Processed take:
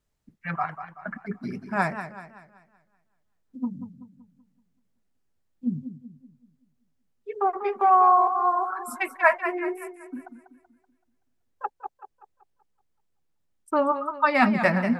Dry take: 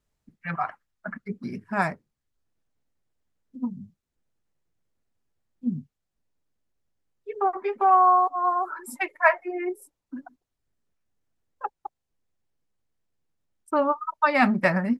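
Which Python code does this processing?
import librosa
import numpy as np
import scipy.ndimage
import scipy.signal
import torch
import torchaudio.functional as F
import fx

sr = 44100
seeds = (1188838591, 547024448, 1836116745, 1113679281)

y = fx.echo_warbled(x, sr, ms=190, feedback_pct=43, rate_hz=2.8, cents=110, wet_db=-10.5)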